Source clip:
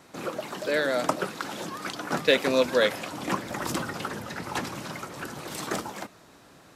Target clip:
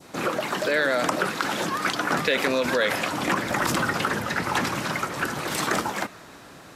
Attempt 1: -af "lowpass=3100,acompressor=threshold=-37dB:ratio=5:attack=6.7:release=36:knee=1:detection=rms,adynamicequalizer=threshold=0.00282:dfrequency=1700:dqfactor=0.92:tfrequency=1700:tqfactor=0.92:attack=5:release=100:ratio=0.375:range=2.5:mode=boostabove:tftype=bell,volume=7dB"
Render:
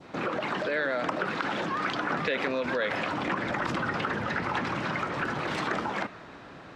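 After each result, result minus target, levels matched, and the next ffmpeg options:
downward compressor: peak gain reduction +5.5 dB; 4,000 Hz band −3.0 dB
-af "lowpass=3100,acompressor=threshold=-29.5dB:ratio=5:attack=6.7:release=36:knee=1:detection=rms,adynamicequalizer=threshold=0.00282:dfrequency=1700:dqfactor=0.92:tfrequency=1700:tqfactor=0.92:attack=5:release=100:ratio=0.375:range=2.5:mode=boostabove:tftype=bell,volume=7dB"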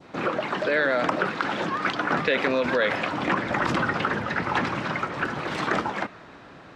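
4,000 Hz band −4.0 dB
-af "acompressor=threshold=-29.5dB:ratio=5:attack=6.7:release=36:knee=1:detection=rms,adynamicequalizer=threshold=0.00282:dfrequency=1700:dqfactor=0.92:tfrequency=1700:tqfactor=0.92:attack=5:release=100:ratio=0.375:range=2.5:mode=boostabove:tftype=bell,volume=7dB"

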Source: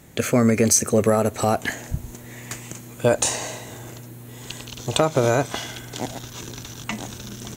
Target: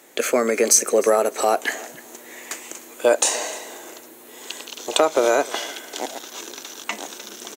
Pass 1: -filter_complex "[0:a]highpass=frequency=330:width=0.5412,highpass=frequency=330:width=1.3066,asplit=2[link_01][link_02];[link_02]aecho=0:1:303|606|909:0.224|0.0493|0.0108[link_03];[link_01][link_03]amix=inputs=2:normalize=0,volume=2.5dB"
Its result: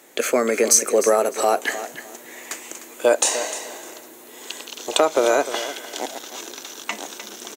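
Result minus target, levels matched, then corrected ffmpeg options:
echo-to-direct +8 dB
-filter_complex "[0:a]highpass=frequency=330:width=0.5412,highpass=frequency=330:width=1.3066,asplit=2[link_01][link_02];[link_02]aecho=0:1:303|606:0.0891|0.0196[link_03];[link_01][link_03]amix=inputs=2:normalize=0,volume=2.5dB"

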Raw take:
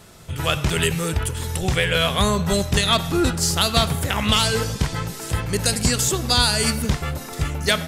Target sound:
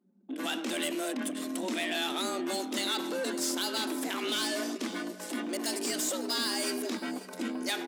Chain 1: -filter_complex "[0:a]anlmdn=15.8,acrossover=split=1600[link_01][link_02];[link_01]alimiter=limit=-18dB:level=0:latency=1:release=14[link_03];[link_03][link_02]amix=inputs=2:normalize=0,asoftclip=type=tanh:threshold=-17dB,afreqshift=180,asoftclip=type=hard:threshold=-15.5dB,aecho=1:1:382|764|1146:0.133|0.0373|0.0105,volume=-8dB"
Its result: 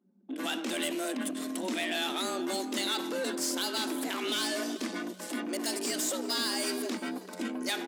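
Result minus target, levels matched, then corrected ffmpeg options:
echo 166 ms early
-filter_complex "[0:a]anlmdn=15.8,acrossover=split=1600[link_01][link_02];[link_01]alimiter=limit=-18dB:level=0:latency=1:release=14[link_03];[link_03][link_02]amix=inputs=2:normalize=0,asoftclip=type=tanh:threshold=-17dB,afreqshift=180,asoftclip=type=hard:threshold=-15.5dB,aecho=1:1:548|1096|1644:0.133|0.0373|0.0105,volume=-8dB"

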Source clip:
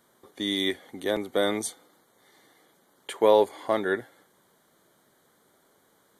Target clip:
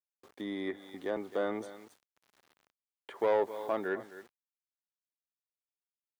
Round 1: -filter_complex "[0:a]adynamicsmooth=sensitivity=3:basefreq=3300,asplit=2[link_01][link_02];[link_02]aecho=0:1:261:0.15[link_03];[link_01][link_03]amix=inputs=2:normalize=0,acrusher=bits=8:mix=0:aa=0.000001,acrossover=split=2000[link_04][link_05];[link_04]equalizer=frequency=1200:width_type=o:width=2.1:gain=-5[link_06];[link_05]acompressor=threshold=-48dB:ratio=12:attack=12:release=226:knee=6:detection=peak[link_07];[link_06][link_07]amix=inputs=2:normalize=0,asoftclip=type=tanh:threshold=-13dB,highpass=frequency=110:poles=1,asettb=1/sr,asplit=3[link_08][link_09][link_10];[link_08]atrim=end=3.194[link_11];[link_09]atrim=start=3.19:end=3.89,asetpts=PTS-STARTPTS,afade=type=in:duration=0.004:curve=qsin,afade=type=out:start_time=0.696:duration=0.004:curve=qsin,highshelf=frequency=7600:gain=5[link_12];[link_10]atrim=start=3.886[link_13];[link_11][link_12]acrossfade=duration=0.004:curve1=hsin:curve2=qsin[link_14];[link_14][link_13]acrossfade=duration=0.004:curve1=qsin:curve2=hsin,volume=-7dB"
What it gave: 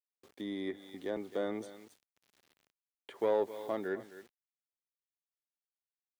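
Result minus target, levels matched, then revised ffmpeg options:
1,000 Hz band −3.0 dB
-filter_complex "[0:a]adynamicsmooth=sensitivity=3:basefreq=3300,asplit=2[link_01][link_02];[link_02]aecho=0:1:261:0.15[link_03];[link_01][link_03]amix=inputs=2:normalize=0,acrusher=bits=8:mix=0:aa=0.000001,acrossover=split=2000[link_04][link_05];[link_04]equalizer=frequency=1200:width_type=o:width=2.1:gain=2.5[link_06];[link_05]acompressor=threshold=-48dB:ratio=12:attack=12:release=226:knee=6:detection=peak[link_07];[link_06][link_07]amix=inputs=2:normalize=0,asoftclip=type=tanh:threshold=-13dB,highpass=frequency=110:poles=1,asettb=1/sr,asplit=3[link_08][link_09][link_10];[link_08]atrim=end=3.194[link_11];[link_09]atrim=start=3.19:end=3.89,asetpts=PTS-STARTPTS,afade=type=in:duration=0.004:curve=qsin,afade=type=out:start_time=0.696:duration=0.004:curve=qsin,highshelf=frequency=7600:gain=5[link_12];[link_10]atrim=start=3.886[link_13];[link_11][link_12]acrossfade=duration=0.004:curve1=hsin:curve2=qsin[link_14];[link_14][link_13]acrossfade=duration=0.004:curve1=qsin:curve2=hsin,volume=-7dB"

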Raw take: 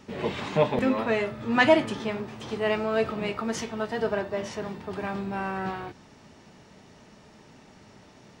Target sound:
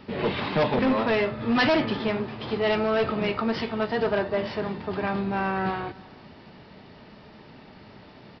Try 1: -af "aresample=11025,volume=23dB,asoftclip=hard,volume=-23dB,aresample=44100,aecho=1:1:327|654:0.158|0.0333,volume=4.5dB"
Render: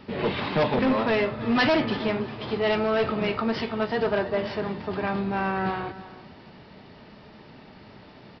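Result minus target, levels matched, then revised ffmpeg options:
echo-to-direct +7.5 dB
-af "aresample=11025,volume=23dB,asoftclip=hard,volume=-23dB,aresample=44100,aecho=1:1:327|654:0.0668|0.014,volume=4.5dB"

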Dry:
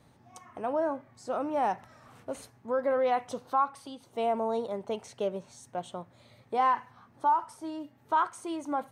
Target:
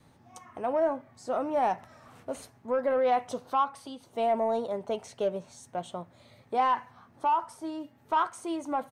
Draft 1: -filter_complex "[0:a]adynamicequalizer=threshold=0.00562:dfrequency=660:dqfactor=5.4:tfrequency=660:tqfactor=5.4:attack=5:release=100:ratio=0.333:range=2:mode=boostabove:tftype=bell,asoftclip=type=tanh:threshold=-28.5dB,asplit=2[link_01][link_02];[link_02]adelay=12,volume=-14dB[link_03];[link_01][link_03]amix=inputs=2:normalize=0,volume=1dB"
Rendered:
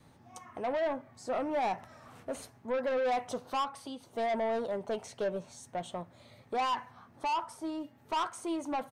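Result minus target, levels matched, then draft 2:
soft clipping: distortion +14 dB
-filter_complex "[0:a]adynamicequalizer=threshold=0.00562:dfrequency=660:dqfactor=5.4:tfrequency=660:tqfactor=5.4:attack=5:release=100:ratio=0.333:range=2:mode=boostabove:tftype=bell,asoftclip=type=tanh:threshold=-17dB,asplit=2[link_01][link_02];[link_02]adelay=12,volume=-14dB[link_03];[link_01][link_03]amix=inputs=2:normalize=0,volume=1dB"

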